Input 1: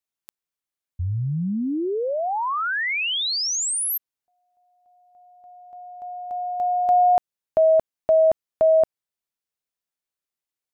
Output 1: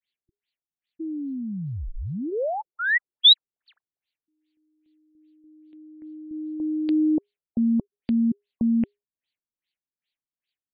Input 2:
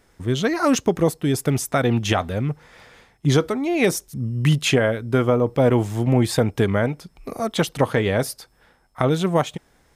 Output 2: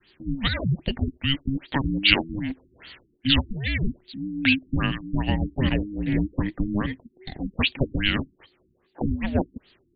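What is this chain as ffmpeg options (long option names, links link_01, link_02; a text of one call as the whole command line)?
ffmpeg -i in.wav -af "adynamicequalizer=threshold=0.0126:dfrequency=960:dqfactor=2.5:tfrequency=960:tqfactor=2.5:attack=5:release=100:ratio=0.375:range=3:mode=boostabove:tftype=bell,aexciter=amount=6.9:drive=7.8:freq=2400,afreqshift=-410,afftfilt=real='re*lt(b*sr/1024,350*pow(4800/350,0.5+0.5*sin(2*PI*2.5*pts/sr)))':imag='im*lt(b*sr/1024,350*pow(4800/350,0.5+0.5*sin(2*PI*2.5*pts/sr)))':win_size=1024:overlap=0.75,volume=-6dB" out.wav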